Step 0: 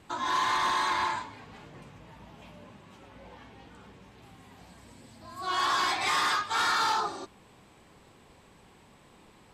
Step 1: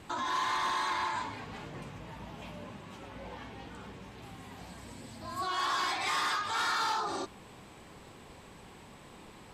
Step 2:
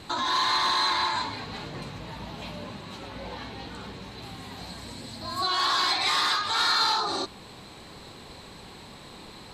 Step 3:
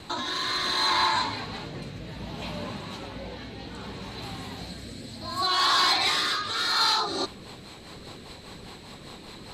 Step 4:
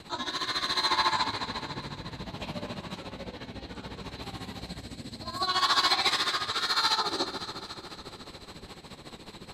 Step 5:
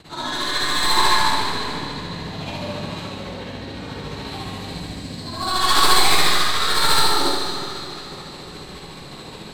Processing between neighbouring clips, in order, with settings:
brickwall limiter −31.5 dBFS, peak gain reduction 9.5 dB; level +5 dB
parametric band 4,100 Hz +13.5 dB 0.3 octaves; in parallel at −2.5 dB: speech leveller within 3 dB 2 s
in parallel at −5 dB: hard clipping −22.5 dBFS, distortion −15 dB; on the sum: rotating-speaker cabinet horn 0.65 Hz, later 5 Hz, at 0:06.58
delay that swaps between a low-pass and a high-pass 127 ms, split 1,000 Hz, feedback 79%, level −8 dB; amplitude tremolo 14 Hz, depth 75%
stylus tracing distortion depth 0.076 ms; convolution reverb RT60 1.3 s, pre-delay 41 ms, DRR −9.5 dB; level −1 dB

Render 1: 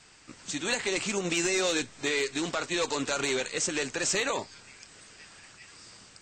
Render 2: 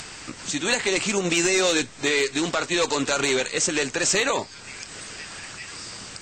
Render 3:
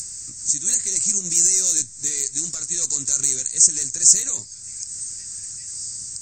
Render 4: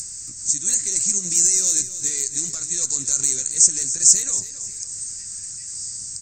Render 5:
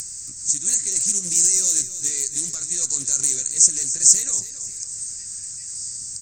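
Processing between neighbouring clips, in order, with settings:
upward compression, threshold −35 dBFS; level +6.5 dB
drawn EQ curve 110 Hz 0 dB, 730 Hz −25 dB, 1,900 Hz −16 dB, 3,100 Hz −21 dB, 6,500 Hz +14 dB; level −2 dB
repeating echo 275 ms, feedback 42%, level −13 dB
high-shelf EQ 12,000 Hz +11 dB; highs frequency-modulated by the lows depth 0.23 ms; level −1.5 dB

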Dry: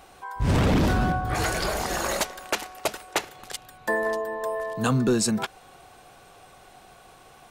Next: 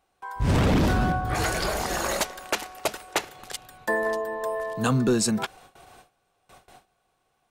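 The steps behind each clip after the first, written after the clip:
noise gate with hold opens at −39 dBFS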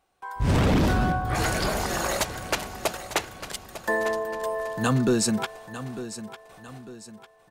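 repeating echo 900 ms, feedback 42%, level −13 dB

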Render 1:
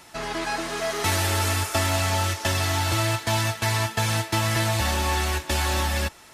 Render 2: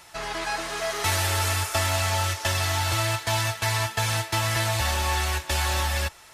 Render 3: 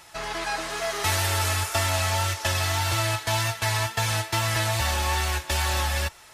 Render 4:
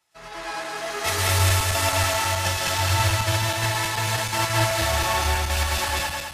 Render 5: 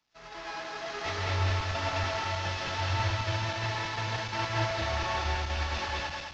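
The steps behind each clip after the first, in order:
parametric band 250 Hz −10 dB 1.3 octaves
tape wow and flutter 27 cents
feedback delay that plays each chunk backwards 107 ms, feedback 74%, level 0 dB; multiband upward and downward expander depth 70%; level −2 dB
variable-slope delta modulation 32 kbit/s; level −7 dB

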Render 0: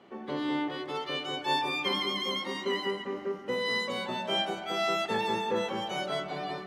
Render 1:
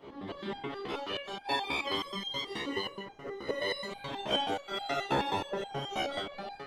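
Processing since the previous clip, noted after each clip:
echo ahead of the sound 257 ms −16.5 dB
random phases in short frames
step-sequenced resonator 9.4 Hz 69–800 Hz
level +8 dB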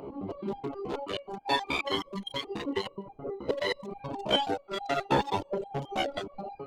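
adaptive Wiener filter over 25 samples
reverb reduction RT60 0.97 s
in parallel at −1 dB: upward compression, threshold −37 dBFS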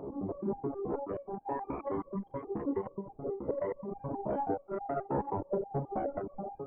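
brickwall limiter −21 dBFS, peak gain reduction 9 dB
Gaussian smoothing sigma 7.4 samples
level +1 dB

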